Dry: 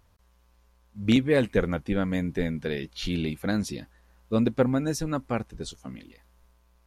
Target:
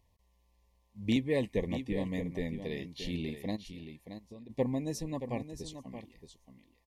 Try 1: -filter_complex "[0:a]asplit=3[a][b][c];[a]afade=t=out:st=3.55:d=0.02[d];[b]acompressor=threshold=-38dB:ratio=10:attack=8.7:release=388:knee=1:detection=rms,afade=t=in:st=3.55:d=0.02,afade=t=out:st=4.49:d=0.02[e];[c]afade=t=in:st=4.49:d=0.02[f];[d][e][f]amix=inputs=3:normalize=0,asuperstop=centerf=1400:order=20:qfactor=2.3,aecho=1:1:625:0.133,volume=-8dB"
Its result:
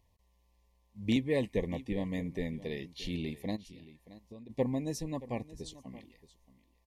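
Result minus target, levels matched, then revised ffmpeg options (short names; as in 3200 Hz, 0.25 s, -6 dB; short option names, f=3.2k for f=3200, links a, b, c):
echo-to-direct -7.5 dB
-filter_complex "[0:a]asplit=3[a][b][c];[a]afade=t=out:st=3.55:d=0.02[d];[b]acompressor=threshold=-38dB:ratio=10:attack=8.7:release=388:knee=1:detection=rms,afade=t=in:st=3.55:d=0.02,afade=t=out:st=4.49:d=0.02[e];[c]afade=t=in:st=4.49:d=0.02[f];[d][e][f]amix=inputs=3:normalize=0,asuperstop=centerf=1400:order=20:qfactor=2.3,aecho=1:1:625:0.316,volume=-8dB"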